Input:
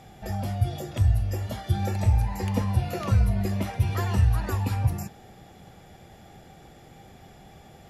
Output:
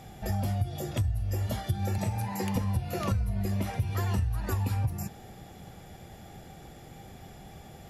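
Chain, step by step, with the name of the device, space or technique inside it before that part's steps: 1.98–2.56 s: high-pass 130 Hz 24 dB/octave; ASMR close-microphone chain (bass shelf 220 Hz +3.5 dB; compression 10:1, threshold -25 dBFS, peak gain reduction 13 dB; treble shelf 8.5 kHz +7 dB)

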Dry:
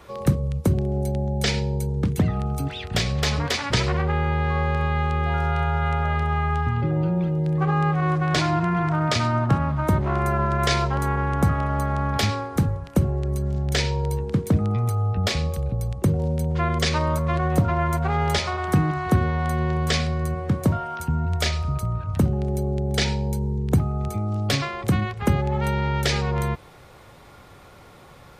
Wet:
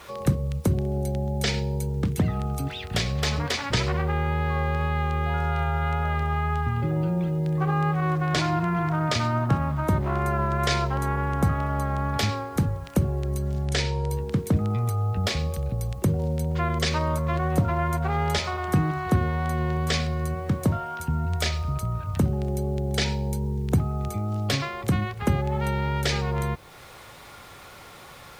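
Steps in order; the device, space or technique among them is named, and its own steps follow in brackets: noise-reduction cassette on a plain deck (tape noise reduction on one side only encoder only; wow and flutter 15 cents; white noise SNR 38 dB); 13.65–14.10 s: low-pass 11 kHz 24 dB/octave; trim -2.5 dB

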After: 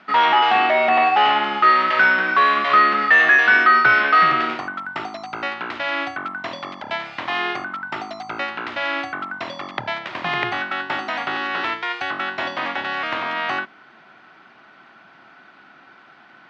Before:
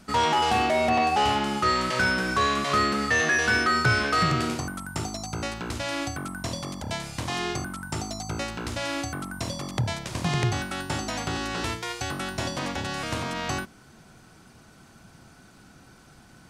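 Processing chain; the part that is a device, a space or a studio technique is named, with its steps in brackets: phone earpiece (cabinet simulation 440–3300 Hz, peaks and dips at 480 Hz -8 dB, 1.3 kHz +3 dB, 1.9 kHz +4 dB); trim +7.5 dB

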